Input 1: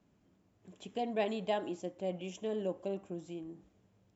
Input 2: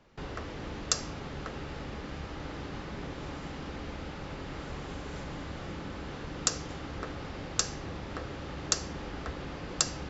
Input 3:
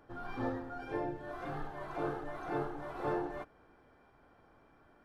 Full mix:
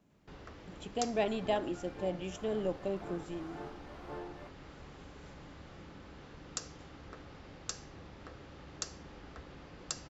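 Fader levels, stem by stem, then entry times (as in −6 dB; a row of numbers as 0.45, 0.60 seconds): +1.5, −11.5, −9.5 decibels; 0.00, 0.10, 1.05 seconds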